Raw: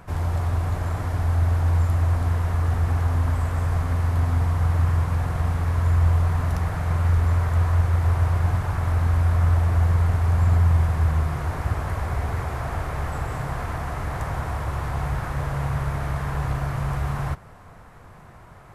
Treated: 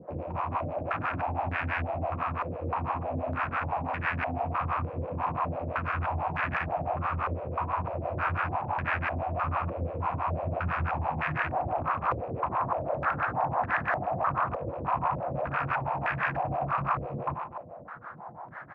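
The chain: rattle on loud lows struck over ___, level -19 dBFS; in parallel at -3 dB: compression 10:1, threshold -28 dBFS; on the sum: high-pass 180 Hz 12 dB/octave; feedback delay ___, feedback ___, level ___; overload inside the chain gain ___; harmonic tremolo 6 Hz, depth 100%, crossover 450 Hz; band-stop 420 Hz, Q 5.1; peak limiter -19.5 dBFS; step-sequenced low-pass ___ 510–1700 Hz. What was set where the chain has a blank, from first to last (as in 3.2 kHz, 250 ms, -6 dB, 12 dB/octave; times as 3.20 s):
-25 dBFS, 97 ms, 59%, -9 dB, 18 dB, 3.3 Hz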